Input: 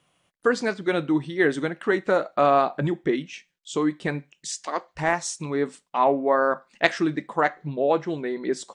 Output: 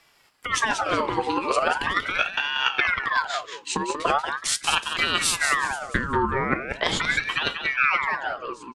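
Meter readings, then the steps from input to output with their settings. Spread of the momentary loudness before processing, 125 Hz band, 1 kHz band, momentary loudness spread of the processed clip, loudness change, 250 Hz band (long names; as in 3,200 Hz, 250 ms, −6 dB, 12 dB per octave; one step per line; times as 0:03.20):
10 LU, −4.0 dB, +1.0 dB, 7 LU, +1.0 dB, −7.0 dB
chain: fade-out on the ending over 1.54 s
brickwall limiter −12.5 dBFS, peak gain reduction 9 dB
compressor whose output falls as the input rises −26 dBFS, ratio −0.5
on a send: repeating echo 186 ms, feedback 29%, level −7 dB
on the sum: ring modulator whose carrier an LFO sweeps 1,400 Hz, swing 55%, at 0.4 Hz
level +7 dB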